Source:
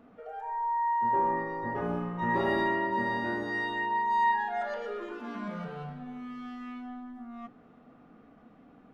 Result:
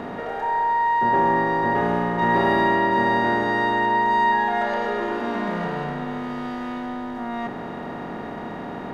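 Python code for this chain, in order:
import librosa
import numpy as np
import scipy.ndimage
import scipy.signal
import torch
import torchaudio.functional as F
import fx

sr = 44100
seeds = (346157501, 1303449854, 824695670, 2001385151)

y = fx.bin_compress(x, sr, power=0.4)
y = y * 10.0 ** (5.0 / 20.0)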